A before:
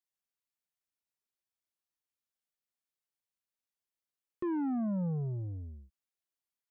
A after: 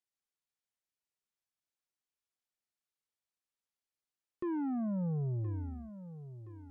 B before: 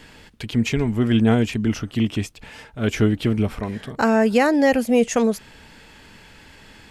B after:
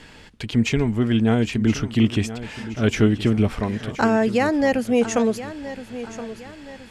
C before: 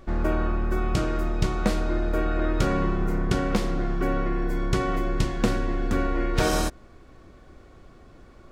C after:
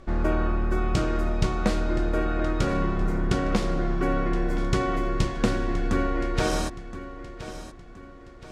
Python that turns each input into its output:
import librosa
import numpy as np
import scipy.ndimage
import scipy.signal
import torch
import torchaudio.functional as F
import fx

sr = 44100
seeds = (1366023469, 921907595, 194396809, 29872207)

y = scipy.signal.sosfilt(scipy.signal.butter(2, 10000.0, 'lowpass', fs=sr, output='sos'), x)
y = fx.rider(y, sr, range_db=3, speed_s=0.5)
y = fx.echo_feedback(y, sr, ms=1021, feedback_pct=42, wet_db=-13.5)